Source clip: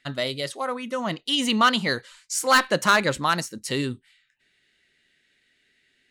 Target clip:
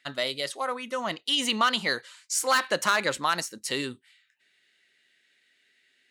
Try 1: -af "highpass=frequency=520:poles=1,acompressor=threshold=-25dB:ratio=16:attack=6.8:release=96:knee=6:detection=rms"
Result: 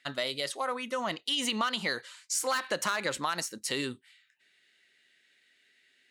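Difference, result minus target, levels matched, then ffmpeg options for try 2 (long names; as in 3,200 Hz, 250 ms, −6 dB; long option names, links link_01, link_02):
downward compressor: peak gain reduction +8 dB
-af "highpass=frequency=520:poles=1,acompressor=threshold=-16.5dB:ratio=16:attack=6.8:release=96:knee=6:detection=rms"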